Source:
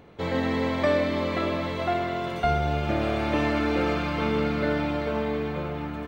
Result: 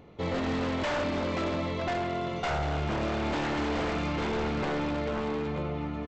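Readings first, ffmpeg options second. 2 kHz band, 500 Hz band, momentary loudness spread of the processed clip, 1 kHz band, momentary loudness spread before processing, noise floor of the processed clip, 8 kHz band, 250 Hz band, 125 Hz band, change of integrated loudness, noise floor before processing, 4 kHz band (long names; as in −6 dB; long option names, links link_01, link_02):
−4.0 dB, −5.0 dB, 2 LU, −4.0 dB, 5 LU, −35 dBFS, can't be measured, −4.0 dB, −3.5 dB, −4.5 dB, −33 dBFS, −2.5 dB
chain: -af "lowshelf=frequency=420:gain=3.5,bandreject=frequency=1600:width=7.4,aresample=16000,aeval=exprs='0.0891*(abs(mod(val(0)/0.0891+3,4)-2)-1)':channel_layout=same,aresample=44100,volume=-3.5dB"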